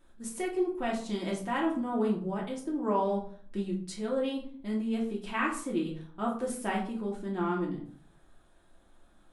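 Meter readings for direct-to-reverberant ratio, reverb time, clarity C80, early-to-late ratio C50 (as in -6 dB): -3.5 dB, 0.50 s, 12.0 dB, 6.5 dB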